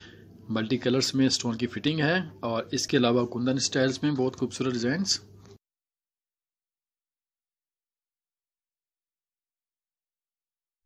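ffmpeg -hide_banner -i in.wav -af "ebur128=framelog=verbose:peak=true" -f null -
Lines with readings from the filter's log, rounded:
Integrated loudness:
  I:         -26.6 LUFS
  Threshold: -37.1 LUFS
Loudness range:
  LRA:         8.1 LU
  Threshold: -48.2 LUFS
  LRA low:   -34.0 LUFS
  LRA high:  -26.0 LUFS
True peak:
  Peak:       -8.2 dBFS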